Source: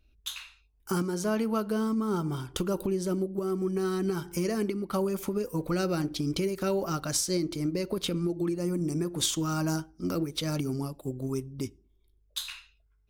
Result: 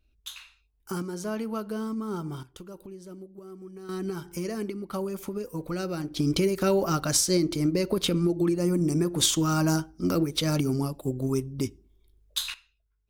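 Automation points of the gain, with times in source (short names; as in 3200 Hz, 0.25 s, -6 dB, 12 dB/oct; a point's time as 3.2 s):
-3.5 dB
from 2.43 s -14 dB
from 3.89 s -3 dB
from 6.17 s +5 dB
from 12.54 s -7.5 dB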